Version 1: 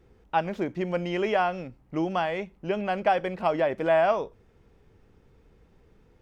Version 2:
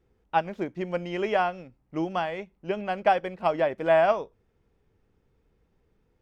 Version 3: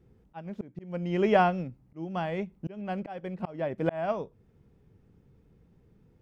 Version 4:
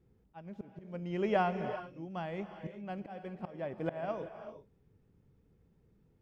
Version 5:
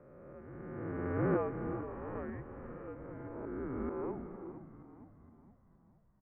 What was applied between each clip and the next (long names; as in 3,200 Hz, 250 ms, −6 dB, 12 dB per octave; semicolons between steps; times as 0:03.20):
expander for the loud parts 1.5 to 1, over −42 dBFS; level +2 dB
parametric band 150 Hz +13 dB 2.3 octaves; volume swells 593 ms
reverb whose tail is shaped and stops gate 410 ms rising, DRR 8.5 dB; level −7.5 dB
peak hold with a rise ahead of every peak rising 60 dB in 2.26 s; single-sideband voice off tune −260 Hz 320–2,100 Hz; echo with shifted repeats 466 ms, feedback 52%, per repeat −52 Hz, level −12 dB; level −5.5 dB